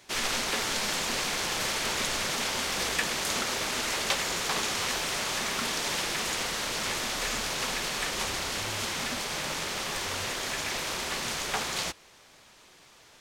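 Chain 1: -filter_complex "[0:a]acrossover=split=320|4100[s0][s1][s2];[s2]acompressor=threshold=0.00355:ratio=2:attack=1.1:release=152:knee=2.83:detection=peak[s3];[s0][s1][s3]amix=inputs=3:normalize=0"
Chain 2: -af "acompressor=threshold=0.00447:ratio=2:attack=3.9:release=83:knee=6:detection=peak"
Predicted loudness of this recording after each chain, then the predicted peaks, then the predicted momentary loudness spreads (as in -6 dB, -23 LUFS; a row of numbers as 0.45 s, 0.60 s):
-31.0 LUFS, -39.0 LUFS; -13.5 dBFS, -23.5 dBFS; 3 LU, 2 LU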